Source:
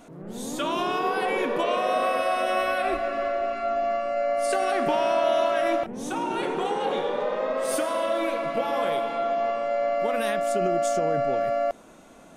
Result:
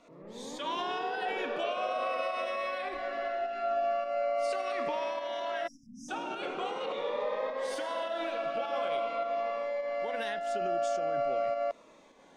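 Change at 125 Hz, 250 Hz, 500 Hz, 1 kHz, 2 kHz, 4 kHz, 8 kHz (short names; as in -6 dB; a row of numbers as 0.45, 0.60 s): under -10 dB, -13.0 dB, -7.5 dB, -7.5 dB, -7.0 dB, -6.0 dB, -13.0 dB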